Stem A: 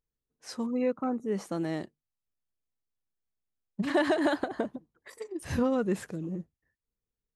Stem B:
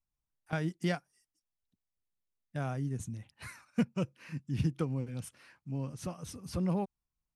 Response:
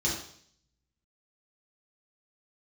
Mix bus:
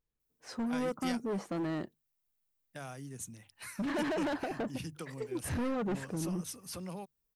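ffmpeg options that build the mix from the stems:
-filter_complex "[0:a]asoftclip=type=hard:threshold=-32dB,volume=1dB[a];[1:a]aemphasis=mode=production:type=riaa,bandreject=f=50:t=h:w=6,bandreject=f=100:t=h:w=6,bandreject=f=150:t=h:w=6,acrossover=split=140|3000[b][c][d];[c]acompressor=threshold=-46dB:ratio=2[e];[b][e][d]amix=inputs=3:normalize=0,adelay=200,volume=0.5dB[f];[a][f]amix=inputs=2:normalize=0,highshelf=f=3.8k:g=-9.5"

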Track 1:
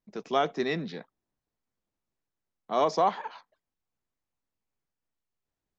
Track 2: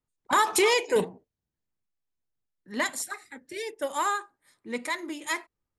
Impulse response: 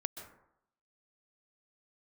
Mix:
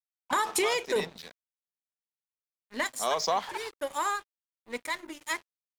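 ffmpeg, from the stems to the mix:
-filter_complex "[0:a]highpass=f=150:p=1,equalizer=f=300:w=3.4:g=-12,crystalizer=i=5:c=0,adelay=300,volume=0.5dB[a];[1:a]asubboost=boost=10.5:cutoff=55,dynaudnorm=f=170:g=3:m=7dB,volume=-7.5dB,asplit=2[b][c];[c]apad=whole_len=268275[d];[a][d]sidechaincompress=threshold=-25dB:ratio=6:attack=5.4:release=1120[e];[e][b]amix=inputs=2:normalize=0,aeval=exprs='sgn(val(0))*max(abs(val(0))-0.00708,0)':c=same,acompressor=threshold=-24dB:ratio=3"

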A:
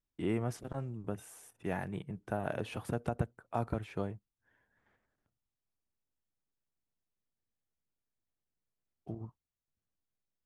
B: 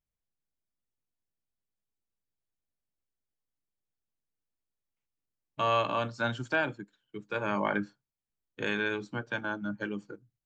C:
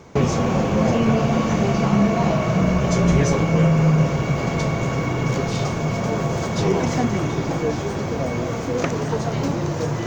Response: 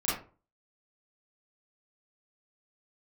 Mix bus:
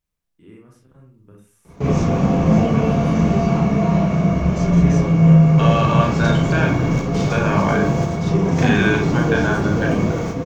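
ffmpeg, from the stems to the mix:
-filter_complex "[0:a]equalizer=f=710:w=3.4:g=-14,adelay=200,volume=-18dB,asplit=2[a][b];[b]volume=-3dB[c];[1:a]alimiter=limit=-22.5dB:level=0:latency=1,volume=2.5dB,asplit=3[d][e][f];[e]volume=-4.5dB[g];[2:a]lowshelf=f=420:g=6,adelay=1650,volume=-9dB,asplit=2[h][i];[i]volume=-8.5dB[j];[f]apad=whole_len=516702[k];[h][k]sidechaingate=range=-17dB:threshold=-59dB:ratio=16:detection=peak[l];[3:a]atrim=start_sample=2205[m];[c][g][j]amix=inputs=3:normalize=0[n];[n][m]afir=irnorm=-1:irlink=0[o];[a][d][l][o]amix=inputs=4:normalize=0,dynaudnorm=f=210:g=13:m=7dB"

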